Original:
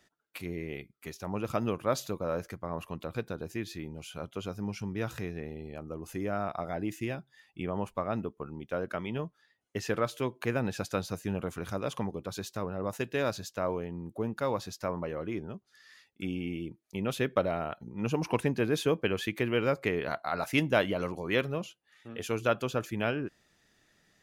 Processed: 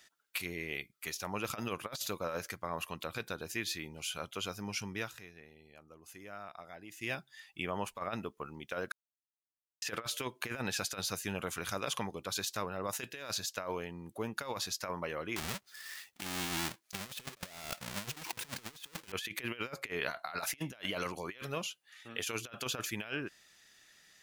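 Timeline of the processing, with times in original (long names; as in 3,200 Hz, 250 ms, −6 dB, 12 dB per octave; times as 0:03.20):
0:04.95–0:07.13: duck −13 dB, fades 0.17 s
0:08.92–0:09.82: silence
0:15.36–0:19.12: each half-wave held at its own peak
whole clip: tilt shelving filter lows −8.5 dB; compressor whose output falls as the input rises −35 dBFS, ratio −0.5; level −3 dB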